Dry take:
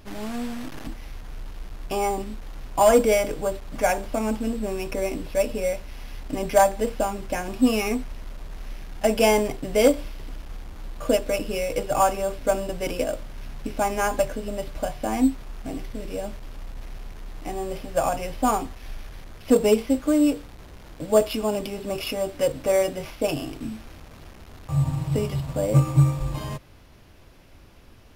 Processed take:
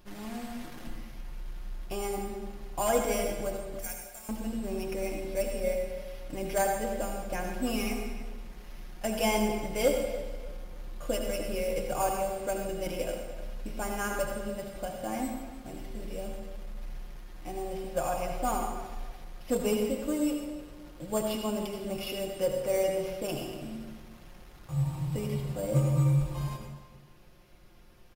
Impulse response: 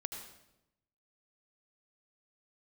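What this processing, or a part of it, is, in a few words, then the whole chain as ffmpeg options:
bathroom: -filter_complex "[0:a]highshelf=frequency=11000:gain=5,aecho=1:1:5.6:0.58,asettb=1/sr,asplit=3[link_01][link_02][link_03];[link_01]atrim=end=3.794[link_04];[link_02]atrim=start=3.79:end=4.29,asetpts=PTS-STARTPTS,afade=type=in:duration=0.004:curve=qsin,afade=type=out:start_time=0.496:duration=0.004:curve=qsin,aderivative[link_05];[link_03]atrim=start=4.286[link_06];[link_04][link_05]acrossfade=duration=0.004:curve1=hsin:curve2=qsin[link_07];[link_07][link_06]acrossfade=duration=0.004:curve1=qsin:curve2=hsin,asplit=2[link_08][link_09];[link_09]adelay=296,lowpass=frequency=4300:poles=1,volume=-14dB,asplit=2[link_10][link_11];[link_11]adelay=296,lowpass=frequency=4300:poles=1,volume=0.31,asplit=2[link_12][link_13];[link_13]adelay=296,lowpass=frequency=4300:poles=1,volume=0.31[link_14];[link_08][link_10][link_12][link_14]amix=inputs=4:normalize=0[link_15];[1:a]atrim=start_sample=2205[link_16];[link_15][link_16]afir=irnorm=-1:irlink=0,volume=-7.5dB"

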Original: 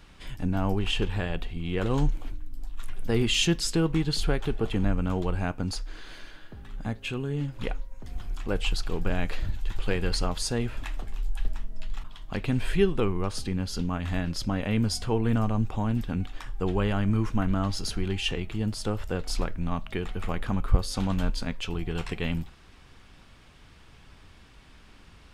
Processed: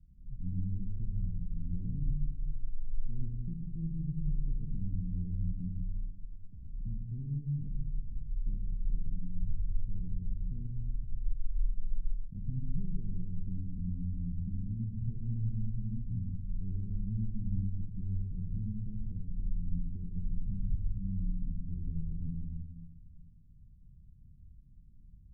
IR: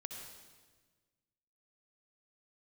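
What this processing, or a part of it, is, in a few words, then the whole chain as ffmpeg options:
club heard from the street: -filter_complex "[0:a]alimiter=limit=-20.5dB:level=0:latency=1:release=184,lowpass=frequency=180:width=0.5412,lowpass=frequency=180:width=1.3066[link_01];[1:a]atrim=start_sample=2205[link_02];[link_01][link_02]afir=irnorm=-1:irlink=0"

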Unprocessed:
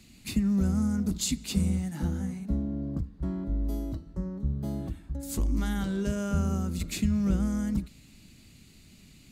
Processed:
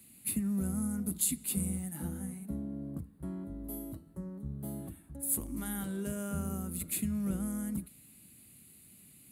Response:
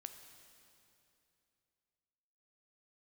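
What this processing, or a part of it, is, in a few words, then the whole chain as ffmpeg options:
budget condenser microphone: -af "highpass=100,highshelf=frequency=7800:width_type=q:width=3:gain=12.5,volume=-6.5dB"

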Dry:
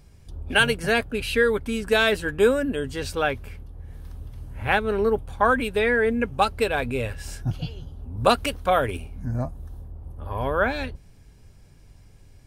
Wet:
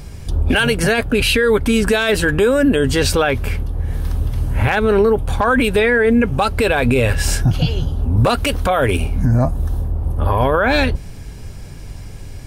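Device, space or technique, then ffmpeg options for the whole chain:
loud club master: -af "acompressor=threshold=-29dB:ratio=1.5,asoftclip=type=hard:threshold=-13.5dB,alimiter=level_in=24dB:limit=-1dB:release=50:level=0:latency=1,volume=-5.5dB"

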